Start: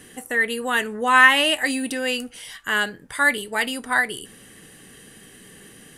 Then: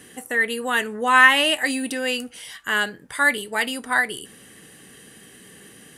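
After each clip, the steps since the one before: HPF 90 Hz 6 dB/oct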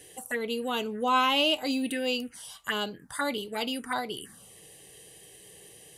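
envelope phaser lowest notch 200 Hz, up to 1800 Hz, full sweep at -21 dBFS; gain -2 dB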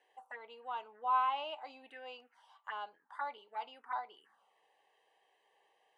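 ladder band-pass 1000 Hz, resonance 60%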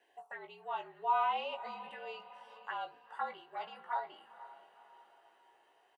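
doubler 18 ms -5.5 dB; frequency shift -54 Hz; diffused feedback echo 0.492 s, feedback 46%, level -15 dB; gain +1 dB

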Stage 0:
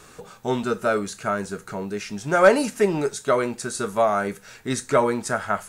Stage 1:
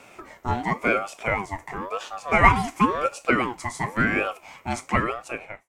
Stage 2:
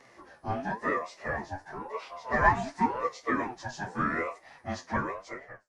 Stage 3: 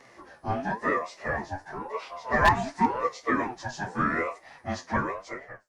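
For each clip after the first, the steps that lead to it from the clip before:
ending faded out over 0.93 s; fifteen-band EQ 400 Hz +4 dB, 1600 Hz +9 dB, 4000 Hz -5 dB, 10000 Hz -6 dB; ring modulator with a swept carrier 730 Hz, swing 35%, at 0.95 Hz; gain -1 dB
inharmonic rescaling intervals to 91%; flange 1.1 Hz, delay 6.8 ms, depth 7.3 ms, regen +61%; gain -1 dB
wavefolder -13.5 dBFS; gain +3 dB

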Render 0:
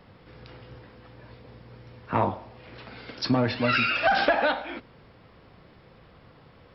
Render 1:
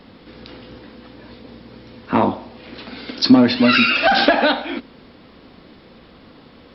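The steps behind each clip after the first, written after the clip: graphic EQ 125/250/4000 Hz -8/+11/+8 dB; gain +5.5 dB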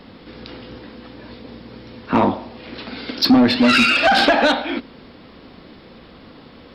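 soft clip -9.5 dBFS, distortion -13 dB; gain +2.5 dB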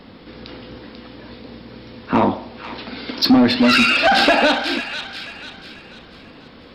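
thin delay 0.49 s, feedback 40%, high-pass 1600 Hz, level -7 dB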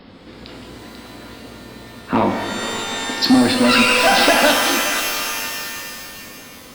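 shimmer reverb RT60 2.5 s, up +12 st, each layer -2 dB, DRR 6 dB; gain -1 dB

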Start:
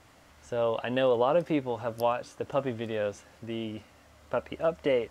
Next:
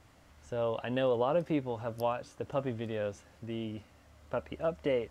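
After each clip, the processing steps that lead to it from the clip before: low shelf 200 Hz +7.5 dB; gain -5.5 dB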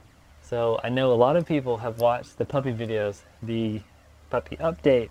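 phaser 0.82 Hz, delay 2.6 ms, feedback 35%; in parallel at -4.5 dB: crossover distortion -50 dBFS; on the sum: gain +4.5 dB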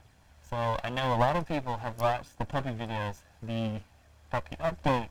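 minimum comb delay 1.2 ms; gain -4.5 dB

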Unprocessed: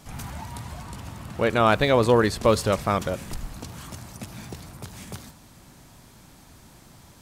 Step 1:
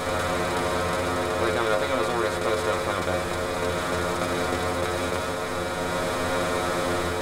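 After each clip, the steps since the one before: per-bin compression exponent 0.2; AGC gain up to 3 dB; metallic resonator 86 Hz, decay 0.3 s, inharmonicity 0.002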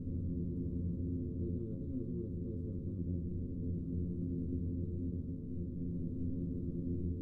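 inverse Chebyshev low-pass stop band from 690 Hz, stop band 50 dB; gain -3.5 dB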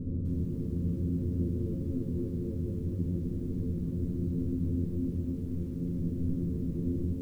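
lo-fi delay 0.252 s, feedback 35%, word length 11-bit, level -5 dB; gain +5.5 dB

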